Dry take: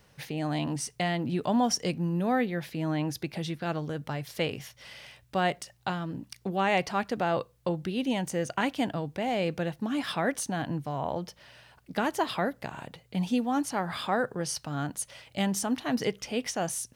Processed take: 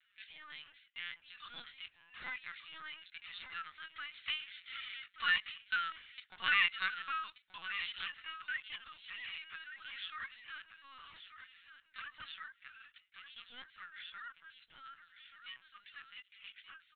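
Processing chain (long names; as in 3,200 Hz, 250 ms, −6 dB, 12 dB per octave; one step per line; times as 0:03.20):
source passing by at 0:05.88, 9 m/s, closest 6.9 metres
inverse Chebyshev high-pass filter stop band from 510 Hz, stop band 50 dB
in parallel at +2 dB: downward compressor 16 to 1, threshold −58 dBFS, peak gain reduction 29.5 dB
on the sum: phase-vocoder pitch shift with formants kept +11.5 semitones
on a send: single-tap delay 1,183 ms −11 dB
on the sum: linear-prediction vocoder at 8 kHz pitch kept
level +5.5 dB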